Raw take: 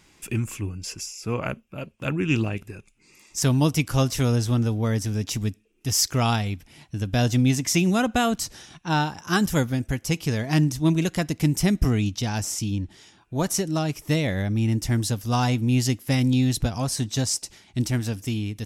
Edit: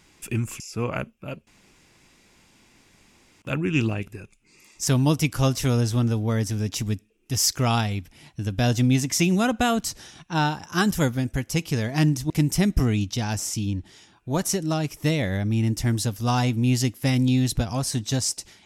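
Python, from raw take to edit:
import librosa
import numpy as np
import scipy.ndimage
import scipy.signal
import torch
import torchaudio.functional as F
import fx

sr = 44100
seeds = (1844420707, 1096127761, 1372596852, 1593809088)

y = fx.edit(x, sr, fx.cut(start_s=0.6, length_s=0.5),
    fx.insert_room_tone(at_s=1.97, length_s=1.95),
    fx.cut(start_s=10.85, length_s=0.5), tone=tone)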